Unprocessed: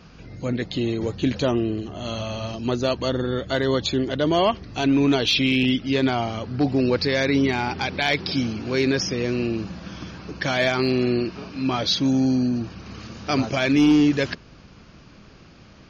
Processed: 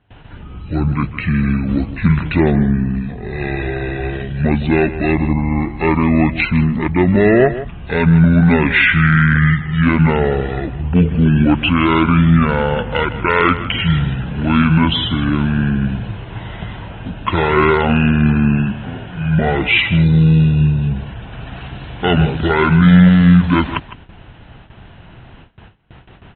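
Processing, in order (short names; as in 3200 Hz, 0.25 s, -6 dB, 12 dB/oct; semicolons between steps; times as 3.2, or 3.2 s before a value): on a send: echo 95 ms -13.5 dB; on the sum: wide varispeed 0.603×; gate with hold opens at -38 dBFS; steep low-pass 3800 Hz 36 dB/oct; gain +8 dB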